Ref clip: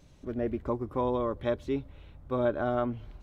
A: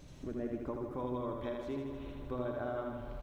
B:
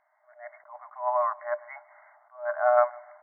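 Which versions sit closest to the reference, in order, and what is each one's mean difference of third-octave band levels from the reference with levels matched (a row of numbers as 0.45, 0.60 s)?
A, B; 7.5, 15.0 dB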